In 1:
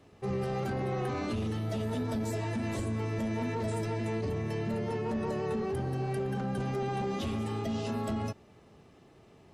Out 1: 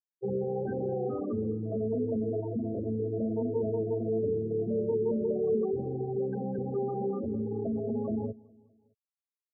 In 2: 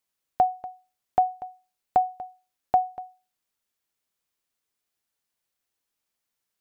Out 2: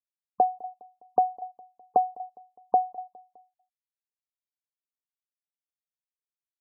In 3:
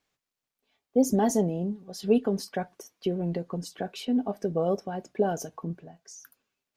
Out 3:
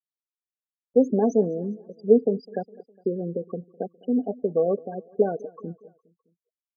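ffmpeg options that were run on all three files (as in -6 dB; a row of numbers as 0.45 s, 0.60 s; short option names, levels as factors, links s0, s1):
-af "highpass=f=100:w=0.5412,highpass=f=100:w=1.3066,equalizer=f=150:t=q:w=4:g=-8,equalizer=f=230:t=q:w=4:g=3,equalizer=f=460:t=q:w=4:g=9,equalizer=f=910:t=q:w=4:g=-6,equalizer=f=2200:t=q:w=4:g=-6,equalizer=f=3200:t=q:w=4:g=-8,lowpass=f=5600:w=0.5412,lowpass=f=5600:w=1.3066,afftfilt=real='re*gte(hypot(re,im),0.0501)':imag='im*gte(hypot(re,im),0.0501)':win_size=1024:overlap=0.75,aecho=1:1:205|410|615:0.0631|0.0341|0.0184"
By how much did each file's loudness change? +2.0 LU, -1.0 LU, +3.5 LU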